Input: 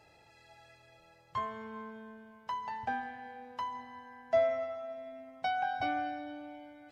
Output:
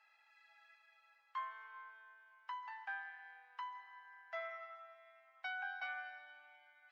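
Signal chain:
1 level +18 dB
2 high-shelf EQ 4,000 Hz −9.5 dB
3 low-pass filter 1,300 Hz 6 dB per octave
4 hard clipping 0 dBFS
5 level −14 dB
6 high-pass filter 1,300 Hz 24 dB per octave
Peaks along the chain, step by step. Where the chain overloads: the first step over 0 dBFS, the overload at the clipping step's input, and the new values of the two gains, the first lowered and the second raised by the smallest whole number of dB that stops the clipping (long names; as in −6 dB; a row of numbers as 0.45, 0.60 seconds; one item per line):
−0.5, −1.0, −2.0, −2.0, −16.0, −32.5 dBFS
no step passes full scale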